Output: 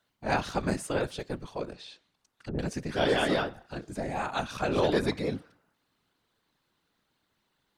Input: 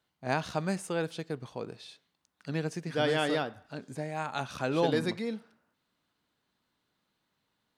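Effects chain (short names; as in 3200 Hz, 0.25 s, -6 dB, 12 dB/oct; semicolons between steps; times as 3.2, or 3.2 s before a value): whisperiser; 1.72–2.59 treble ducked by the level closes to 500 Hz, closed at -34.5 dBFS; core saturation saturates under 350 Hz; gain +3 dB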